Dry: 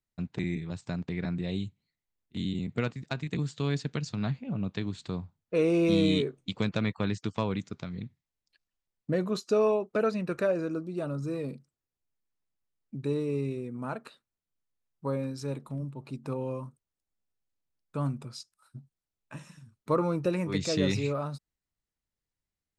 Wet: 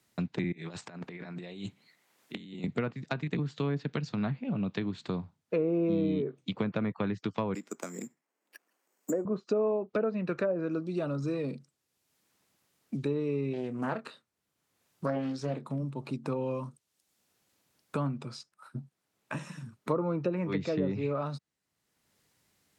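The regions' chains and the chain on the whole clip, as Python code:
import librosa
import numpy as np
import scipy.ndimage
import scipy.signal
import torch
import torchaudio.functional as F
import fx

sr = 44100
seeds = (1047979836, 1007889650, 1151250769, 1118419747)

y = fx.chain(x, sr, fx.highpass(hz=520.0, slope=6),
    fx.over_compress(threshold_db=-48.0, ratio=-0.5), at=(0.52, 2.64))
y = fx.chain(y, sr, fx.highpass(hz=270.0, slope=24),
    fx.high_shelf(hz=3200.0, db=-8.5),
    fx.resample_bad(factor=6, down='filtered', up='zero_stuff'), at=(7.54, 9.25))
y = fx.chain(y, sr, fx.doubler(ms=27.0, db=-10.0),
    fx.doppler_dist(depth_ms=0.46), at=(13.53, 15.69))
y = fx.env_lowpass_down(y, sr, base_hz=920.0, full_db=-22.5)
y = scipy.signal.sosfilt(scipy.signal.butter(2, 130.0, 'highpass', fs=sr, output='sos'), y)
y = fx.band_squash(y, sr, depth_pct=70)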